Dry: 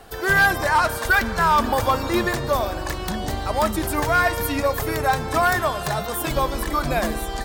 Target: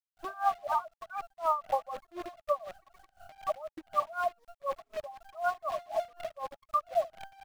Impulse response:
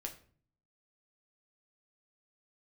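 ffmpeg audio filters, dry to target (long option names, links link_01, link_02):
-filter_complex "[0:a]asplit=3[link_01][link_02][link_03];[link_01]bandpass=frequency=730:width_type=q:width=8,volume=0dB[link_04];[link_02]bandpass=frequency=1090:width_type=q:width=8,volume=-6dB[link_05];[link_03]bandpass=frequency=2440:width_type=q:width=8,volume=-9dB[link_06];[link_04][link_05][link_06]amix=inputs=3:normalize=0,highshelf=frequency=2700:gain=-8,asplit=2[link_07][link_08];[link_08]alimiter=level_in=1dB:limit=-24dB:level=0:latency=1:release=50,volume=-1dB,volume=-1.5dB[link_09];[link_07][link_09]amix=inputs=2:normalize=0,acontrast=80,afftfilt=real='re*gte(hypot(re,im),0.282)':imag='im*gte(hypot(re,im),0.282)':win_size=1024:overlap=0.75,asubboost=boost=5.5:cutoff=200,aecho=1:1:3.4:0.93,acrusher=bits=6:dc=4:mix=0:aa=0.000001,acrossover=split=4000[link_10][link_11];[link_11]acompressor=threshold=-46dB:ratio=4:attack=1:release=60[link_12];[link_10][link_12]amix=inputs=2:normalize=0,bandreject=frequency=850:width=22,aeval=exprs='val(0)*pow(10,-22*(0.5-0.5*cos(2*PI*4*n/s))/20)':channel_layout=same,volume=-6dB"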